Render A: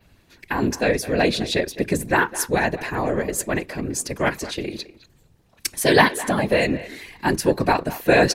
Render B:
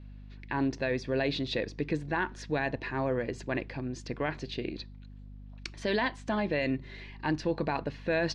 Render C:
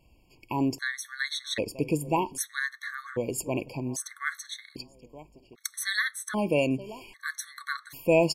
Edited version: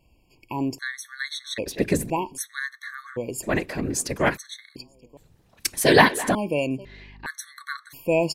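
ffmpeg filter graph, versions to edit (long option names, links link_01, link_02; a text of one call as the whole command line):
ffmpeg -i take0.wav -i take1.wav -i take2.wav -filter_complex "[0:a]asplit=3[link_01][link_02][link_03];[2:a]asplit=5[link_04][link_05][link_06][link_07][link_08];[link_04]atrim=end=1.662[link_09];[link_01]atrim=start=1.658:end=2.102[link_10];[link_05]atrim=start=2.098:end=3.44[link_11];[link_02]atrim=start=3.42:end=4.38[link_12];[link_06]atrim=start=4.36:end=5.172[link_13];[link_03]atrim=start=5.168:end=6.352[link_14];[link_07]atrim=start=6.348:end=6.852[link_15];[1:a]atrim=start=6.848:end=7.262[link_16];[link_08]atrim=start=7.258[link_17];[link_09][link_10]acrossfade=duration=0.004:curve1=hsin:curve2=hsin[link_18];[link_18][link_11]acrossfade=duration=0.004:curve1=hsin:curve2=hsin[link_19];[link_19][link_12]acrossfade=duration=0.02:curve1=tri:curve2=tri[link_20];[link_20][link_13]acrossfade=duration=0.02:curve1=tri:curve2=tri[link_21];[link_21][link_14]acrossfade=duration=0.004:curve1=hsin:curve2=hsin[link_22];[link_22][link_15]acrossfade=duration=0.004:curve1=hsin:curve2=hsin[link_23];[link_23][link_16]acrossfade=duration=0.004:curve1=hsin:curve2=hsin[link_24];[link_24][link_17]acrossfade=duration=0.004:curve1=hsin:curve2=hsin" out.wav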